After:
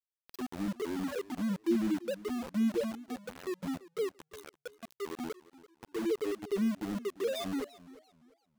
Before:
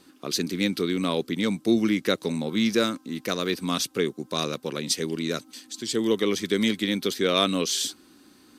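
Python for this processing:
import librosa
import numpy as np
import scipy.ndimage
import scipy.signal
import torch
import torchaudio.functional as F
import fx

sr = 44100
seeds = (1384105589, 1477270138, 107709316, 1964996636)

y = fx.spec_topn(x, sr, count=2)
y = np.where(np.abs(y) >= 10.0 ** (-32.5 / 20.0), y, 0.0)
y = fx.echo_warbled(y, sr, ms=343, feedback_pct=30, rate_hz=2.8, cents=155, wet_db=-18.5)
y = y * 10.0 ** (-4.0 / 20.0)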